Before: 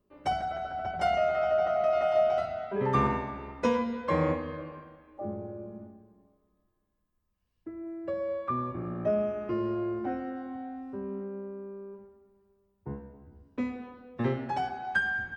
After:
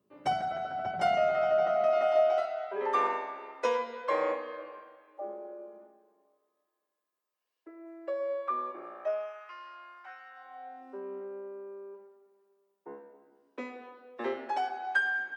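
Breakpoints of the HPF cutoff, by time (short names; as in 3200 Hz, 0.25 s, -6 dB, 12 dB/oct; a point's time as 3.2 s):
HPF 24 dB/oct
1.46 s 110 Hz
2.56 s 420 Hz
8.76 s 420 Hz
9.51 s 1100 Hz
10.29 s 1100 Hz
10.91 s 350 Hz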